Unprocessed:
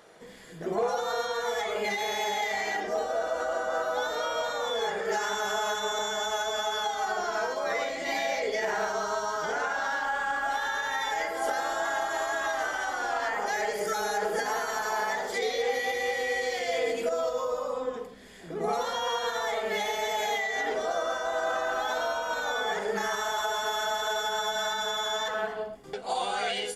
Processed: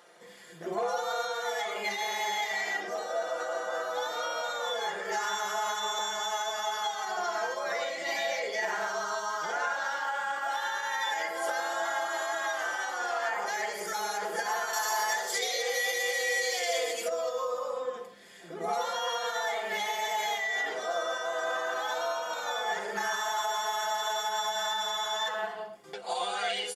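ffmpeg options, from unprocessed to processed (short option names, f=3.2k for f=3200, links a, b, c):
-filter_complex "[0:a]asettb=1/sr,asplit=3[a][b][c];[a]atrim=end=14.734[d];[b]atrim=start=14.73:end=17.08,asetpts=PTS-STARTPTS,afade=t=in:d=0.004:c=qsin,afade=t=out:st=2.346:d=0.004:c=qsin,bass=f=250:g=-8,treble=f=4k:g=10[e];[c]atrim=start=17.076[f];[d][e]acrossfade=d=0.004:c1=hsin:c2=qsin[g];[g][f]acrossfade=d=0.004:c1=qsin:c2=hsin,highpass=170,equalizer=f=220:w=0.59:g=-7,aecho=1:1:5.7:0.54,volume=-1.5dB"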